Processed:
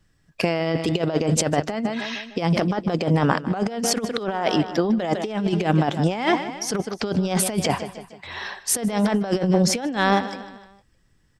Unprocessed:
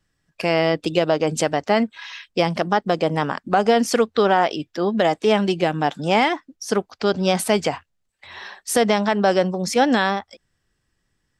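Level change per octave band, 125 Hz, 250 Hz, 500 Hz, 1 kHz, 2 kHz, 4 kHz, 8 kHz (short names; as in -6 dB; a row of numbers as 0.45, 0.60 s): +4.5, +0.5, -5.0, -5.0, -3.5, -2.0, +4.0 dB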